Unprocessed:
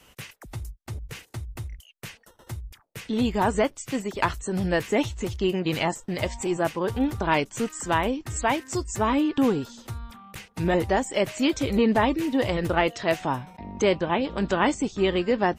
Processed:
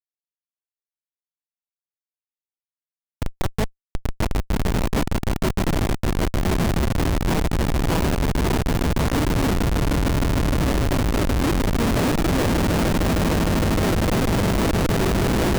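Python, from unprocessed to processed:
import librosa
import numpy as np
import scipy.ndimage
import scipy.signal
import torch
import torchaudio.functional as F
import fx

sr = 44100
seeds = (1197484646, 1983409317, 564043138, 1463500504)

y = fx.env_lowpass(x, sr, base_hz=2400.0, full_db=-19.0)
y = fx.echo_swell(y, sr, ms=153, loudest=8, wet_db=-5.0)
y = fx.schmitt(y, sr, flips_db=-14.0)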